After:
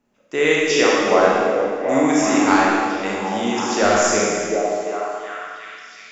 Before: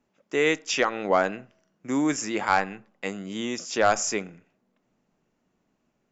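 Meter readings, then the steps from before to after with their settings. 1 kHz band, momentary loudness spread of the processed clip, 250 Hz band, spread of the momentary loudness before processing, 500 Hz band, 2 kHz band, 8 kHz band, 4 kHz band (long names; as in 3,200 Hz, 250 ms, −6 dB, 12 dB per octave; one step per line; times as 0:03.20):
+8.5 dB, 14 LU, +10.0 dB, 12 LU, +10.0 dB, +8.0 dB, can't be measured, +8.0 dB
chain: echo through a band-pass that steps 367 ms, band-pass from 350 Hz, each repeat 0.7 octaves, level −1 dB
four-comb reverb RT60 1.8 s, combs from 30 ms, DRR −4.5 dB
level +2 dB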